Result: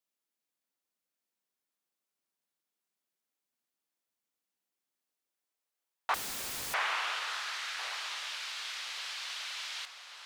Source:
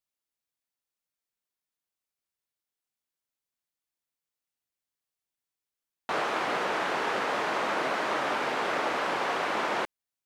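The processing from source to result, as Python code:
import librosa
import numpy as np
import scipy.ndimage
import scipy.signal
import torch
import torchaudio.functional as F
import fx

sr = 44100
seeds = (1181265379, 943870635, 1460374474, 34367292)

y = fx.filter_sweep_highpass(x, sr, from_hz=210.0, to_hz=3900.0, start_s=4.84, end_s=7.38, q=1.3)
y = fx.echo_alternate(y, sr, ms=566, hz=1400.0, feedback_pct=51, wet_db=-4.0)
y = fx.overflow_wrap(y, sr, gain_db=34.0, at=(6.14, 6.74))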